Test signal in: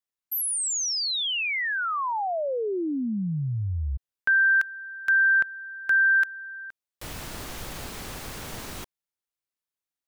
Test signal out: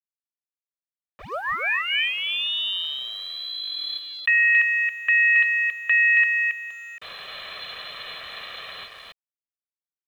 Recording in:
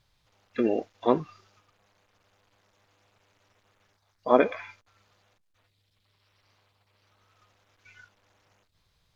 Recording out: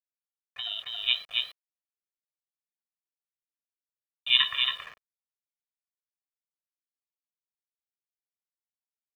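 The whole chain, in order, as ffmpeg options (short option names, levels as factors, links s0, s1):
-filter_complex "[0:a]acrossover=split=150|1900[s0][s1][s2];[s0]crystalizer=i=9.5:c=0[s3];[s2]acompressor=threshold=0.0126:ratio=12:attack=34:release=45:knee=6:detection=peak[s4];[s3][s1][s4]amix=inputs=3:normalize=0,lowpass=f=3200:t=q:w=0.5098,lowpass=f=3200:t=q:w=0.6013,lowpass=f=3200:t=q:w=0.9,lowpass=f=3200:t=q:w=2.563,afreqshift=-3800,asplit=2[s5][s6];[s6]aecho=0:1:275:0.562[s7];[s5][s7]amix=inputs=2:normalize=0,acrusher=bits=6:mix=0:aa=0.000001,acrossover=split=470 3000:gain=0.141 1 0.0891[s8][s9][s10];[s8][s9][s10]amix=inputs=3:normalize=0,dynaudnorm=f=150:g=13:m=3.55,aeval=exprs='val(0)*sin(2*PI*350*n/s)':c=same,aecho=1:1:1.7:0.63,volume=0.631"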